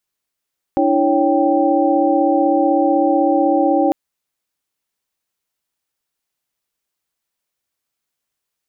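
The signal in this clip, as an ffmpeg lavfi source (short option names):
-f lavfi -i "aevalsrc='0.133*(sin(2*PI*293.66*t)+sin(2*PI*329.63*t)+sin(2*PI*554.37*t)+sin(2*PI*783.99*t))':d=3.15:s=44100"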